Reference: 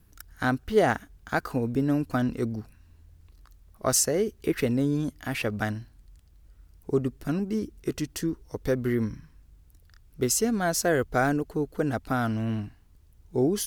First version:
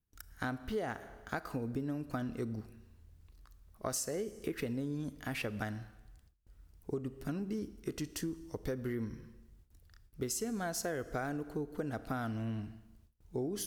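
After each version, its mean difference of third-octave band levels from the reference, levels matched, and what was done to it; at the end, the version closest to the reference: 4.0 dB: Schroeder reverb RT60 1 s, combs from 27 ms, DRR 15.5 dB; compression 6:1, threshold -28 dBFS, peak gain reduction 12 dB; gate with hold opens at -46 dBFS; trim -5.5 dB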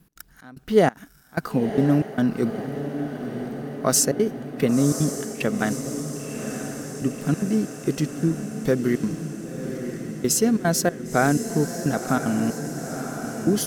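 8.0 dB: resonant low shelf 120 Hz -9 dB, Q 3; trance gate "x.xxx..xxx" 186 bpm -24 dB; on a send: echo that smears into a reverb 1021 ms, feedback 69%, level -9 dB; on the sum: trim +3.5 dB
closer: first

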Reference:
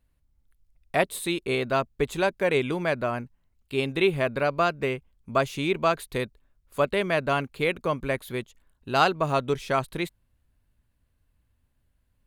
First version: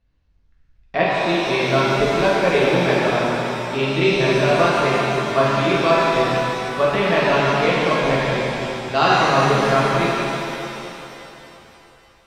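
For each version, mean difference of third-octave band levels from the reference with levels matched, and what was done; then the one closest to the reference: 11.0 dB: steep low-pass 5.9 kHz; pitch-shifted reverb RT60 3.1 s, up +7 st, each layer -8 dB, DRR -7.5 dB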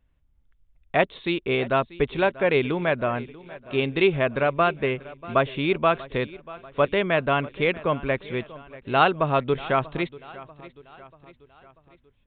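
5.5 dB: feedback delay 639 ms, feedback 50%, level -19 dB; resampled via 8 kHz; trim +2.5 dB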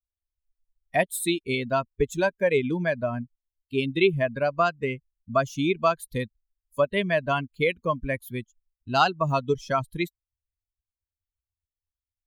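7.5 dB: expander on every frequency bin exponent 2; compression 1.5:1, threshold -32 dBFS, peak gain reduction 5.5 dB; trim +8 dB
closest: second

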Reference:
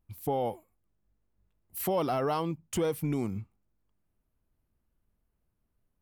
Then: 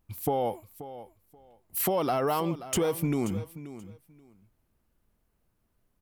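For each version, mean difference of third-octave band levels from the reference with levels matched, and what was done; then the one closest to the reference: 4.0 dB: bass shelf 190 Hz -5 dB; compression, threshold -31 dBFS, peak gain reduction 6.5 dB; on a send: feedback delay 531 ms, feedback 18%, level -14.5 dB; on the sum: trim +7.5 dB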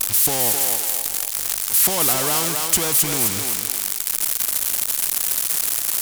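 15.5 dB: zero-crossing glitches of -27.5 dBFS; peaking EQ 9.4 kHz +12 dB 1.6 oct; thinning echo 262 ms, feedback 32%, high-pass 640 Hz, level -6 dB; spectrum-flattening compressor 2:1; trim +7.5 dB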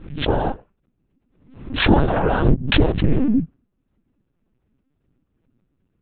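11.5 dB: peaking EQ 180 Hz +14.5 dB 0.7 oct; noise-vocoded speech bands 8; LPC vocoder at 8 kHz pitch kept; swell ahead of each attack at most 90 dB/s; trim +8.5 dB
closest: first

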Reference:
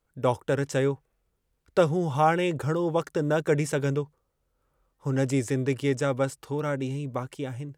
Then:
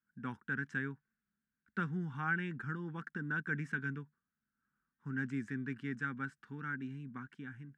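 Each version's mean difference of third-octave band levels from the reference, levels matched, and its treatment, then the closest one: 7.5 dB: two resonant band-passes 580 Hz, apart 2.9 oct; trim +2 dB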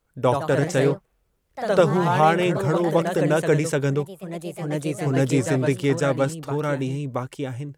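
3.5 dB: ever faster or slower copies 107 ms, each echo +2 st, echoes 3, each echo -6 dB; trim +4 dB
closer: second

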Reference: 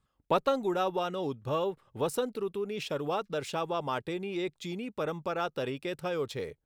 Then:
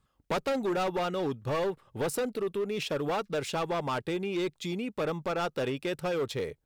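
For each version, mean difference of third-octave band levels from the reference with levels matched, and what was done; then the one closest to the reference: 3.0 dB: hard clipper -29.5 dBFS, distortion -9 dB; trim +3.5 dB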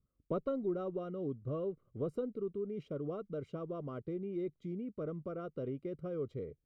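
9.0 dB: boxcar filter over 51 samples; trim -1.5 dB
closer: first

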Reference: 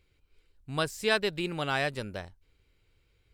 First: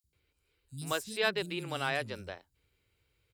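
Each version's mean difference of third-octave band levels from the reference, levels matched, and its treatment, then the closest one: 10.5 dB: high-pass 61 Hz; treble shelf 6.6 kHz +7.5 dB; three bands offset in time highs, lows, mids 40/130 ms, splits 240/5500 Hz; trim -3.5 dB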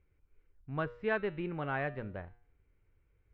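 8.0 dB: low-pass 2.1 kHz 24 dB/octave; bass shelf 200 Hz +4 dB; de-hum 119.9 Hz, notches 39; trim -5 dB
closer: second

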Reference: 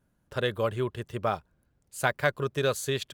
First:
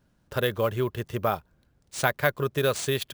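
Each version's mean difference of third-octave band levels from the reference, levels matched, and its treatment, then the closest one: 3.0 dB: in parallel at -2 dB: compression, threshold -32 dBFS, peak gain reduction 12.5 dB; on the sum: sample-rate reducer 15 kHz, jitter 0%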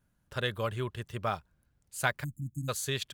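5.5 dB: peaking EQ 420 Hz -7 dB 2.2 oct; spectral selection erased 2.23–2.69 s, 310–6400 Hz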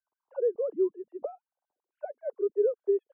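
21.5 dB: formants replaced by sine waves; touch-sensitive low-pass 440–1000 Hz down, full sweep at -29.5 dBFS; trim -8.5 dB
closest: first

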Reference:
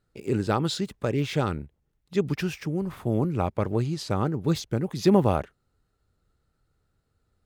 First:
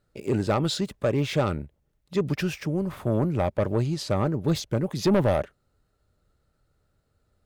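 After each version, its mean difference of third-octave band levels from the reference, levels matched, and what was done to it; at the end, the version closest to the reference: 1.5 dB: peaking EQ 590 Hz +7.5 dB 0.26 oct; saturation -17 dBFS, distortion -11 dB; trim +2 dB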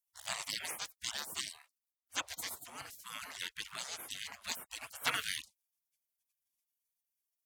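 20.5 dB: frequency weighting A; spectral gate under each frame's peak -30 dB weak; trim +13.5 dB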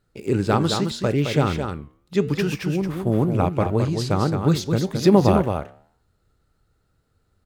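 4.5 dB: delay 216 ms -6 dB; flange 0.79 Hz, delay 7 ms, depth 7.7 ms, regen -86%; trim +9 dB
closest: first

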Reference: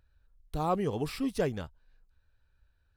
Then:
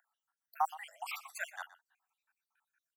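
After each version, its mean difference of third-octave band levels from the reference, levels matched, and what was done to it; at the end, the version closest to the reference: 18.0 dB: random holes in the spectrogram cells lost 69%; steep high-pass 700 Hz 96 dB/octave; peaking EQ 4.1 kHz -14.5 dB 0.56 oct; on a send: delay 121 ms -17.5 dB; on the sum: trim +6.5 dB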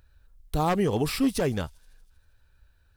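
3.5 dB: one-sided wavefolder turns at -25 dBFS; treble shelf 6.4 kHz +5.5 dB; peak limiter -23 dBFS, peak gain reduction 7.5 dB; on a send: feedback echo behind a high-pass 79 ms, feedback 73%, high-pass 5.2 kHz, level -20.5 dB; on the sum: trim +8 dB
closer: second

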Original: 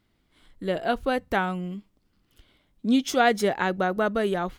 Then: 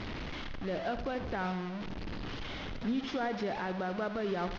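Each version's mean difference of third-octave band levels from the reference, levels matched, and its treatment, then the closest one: 9.5 dB: one-bit delta coder 32 kbps, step -27 dBFS; peak limiter -19 dBFS, peak gain reduction 10.5 dB; distance through air 190 m; feedback delay 86 ms, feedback 58%, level -12 dB; trim -5.5 dB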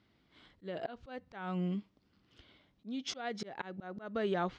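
7.0 dB: low-pass 5.6 kHz 24 dB/octave; compression 12:1, threshold -28 dBFS, peak gain reduction 13.5 dB; high-pass 80 Hz 12 dB/octave; slow attack 260 ms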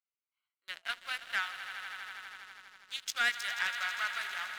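15.0 dB: local Wiener filter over 25 samples; high-pass 1.5 kHz 24 dB/octave; on a send: echo with a slow build-up 81 ms, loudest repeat 5, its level -14.5 dB; on the sum: waveshaping leveller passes 2; trim -6 dB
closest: second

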